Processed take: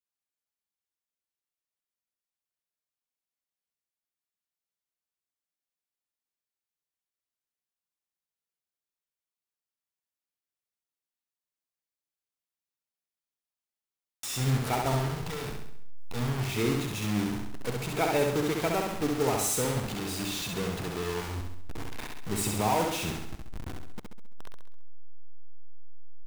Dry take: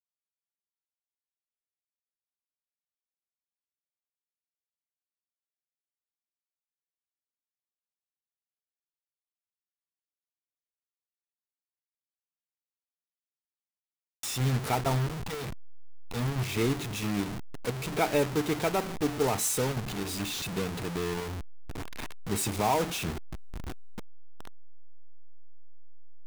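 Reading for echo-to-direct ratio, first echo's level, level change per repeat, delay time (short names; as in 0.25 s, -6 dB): -2.0 dB, -3.5 dB, -6.0 dB, 67 ms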